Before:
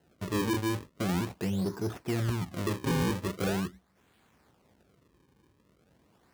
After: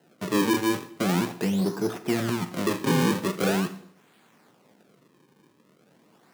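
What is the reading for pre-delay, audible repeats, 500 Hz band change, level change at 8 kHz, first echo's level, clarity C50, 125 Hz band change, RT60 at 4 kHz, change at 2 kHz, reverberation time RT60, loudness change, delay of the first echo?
7 ms, no echo, +6.5 dB, +7.0 dB, no echo, 13.5 dB, +1.5 dB, 0.65 s, +7.0 dB, 0.65 s, +6.0 dB, no echo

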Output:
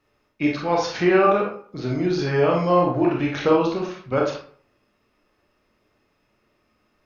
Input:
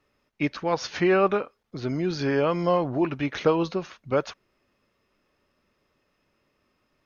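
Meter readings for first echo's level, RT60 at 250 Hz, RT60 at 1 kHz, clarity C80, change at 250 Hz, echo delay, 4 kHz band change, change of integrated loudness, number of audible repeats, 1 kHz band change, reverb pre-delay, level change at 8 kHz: no echo, 0.50 s, 0.50 s, 9.0 dB, +4.5 dB, no echo, +2.5 dB, +4.0 dB, no echo, +5.5 dB, 25 ms, no reading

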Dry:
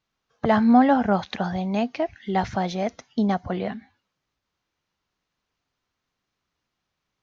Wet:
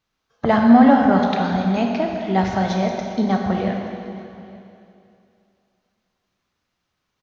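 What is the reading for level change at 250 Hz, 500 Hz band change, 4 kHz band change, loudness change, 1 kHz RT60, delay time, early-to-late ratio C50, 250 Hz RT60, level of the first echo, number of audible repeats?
+5.5 dB, +4.5 dB, +4.5 dB, +5.0 dB, 2.7 s, 878 ms, 2.5 dB, 2.8 s, -23.5 dB, 1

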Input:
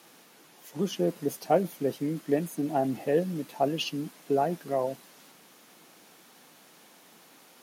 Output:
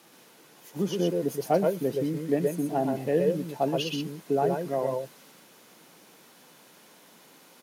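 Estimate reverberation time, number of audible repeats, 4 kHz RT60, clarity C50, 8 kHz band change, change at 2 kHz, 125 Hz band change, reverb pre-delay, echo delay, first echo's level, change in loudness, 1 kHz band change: no reverb, 1, no reverb, no reverb, +0.5 dB, +0.5 dB, +2.5 dB, no reverb, 122 ms, -2.0 dB, +1.5 dB, 0.0 dB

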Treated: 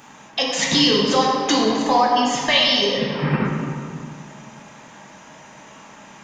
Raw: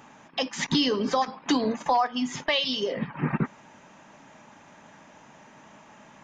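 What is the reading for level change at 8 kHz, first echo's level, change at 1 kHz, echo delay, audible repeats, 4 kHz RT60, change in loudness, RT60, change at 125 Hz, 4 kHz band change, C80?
+12.0 dB, no echo, +8.0 dB, no echo, no echo, 1.3 s, +8.5 dB, 2.2 s, +8.0 dB, +10.5 dB, 2.0 dB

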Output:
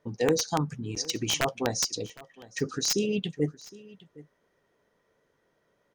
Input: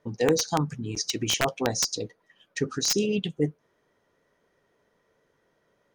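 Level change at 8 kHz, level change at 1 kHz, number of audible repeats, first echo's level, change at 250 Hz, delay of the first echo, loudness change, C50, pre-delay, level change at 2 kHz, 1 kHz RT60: -2.0 dB, -2.0 dB, 1, -21.0 dB, -2.0 dB, 762 ms, -2.0 dB, no reverb, no reverb, -2.0 dB, no reverb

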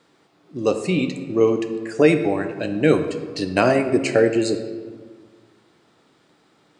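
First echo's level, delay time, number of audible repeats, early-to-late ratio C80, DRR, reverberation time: no echo, no echo, no echo, 10.5 dB, 7.0 dB, 1.6 s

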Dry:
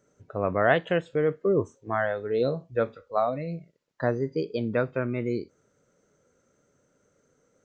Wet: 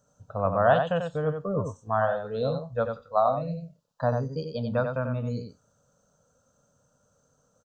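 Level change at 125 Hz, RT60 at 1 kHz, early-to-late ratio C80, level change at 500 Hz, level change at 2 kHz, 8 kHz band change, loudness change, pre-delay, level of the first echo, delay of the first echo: +3.0 dB, no reverb, no reverb, -0.5 dB, -4.0 dB, no reading, 0.0 dB, no reverb, -6.0 dB, 91 ms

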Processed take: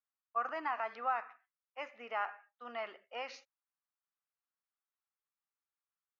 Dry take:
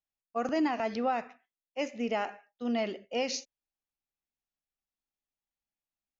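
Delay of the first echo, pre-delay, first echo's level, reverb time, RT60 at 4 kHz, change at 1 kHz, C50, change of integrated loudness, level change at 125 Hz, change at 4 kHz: no echo, no reverb, no echo, no reverb, no reverb, -2.5 dB, no reverb, -6.5 dB, no reading, -11.5 dB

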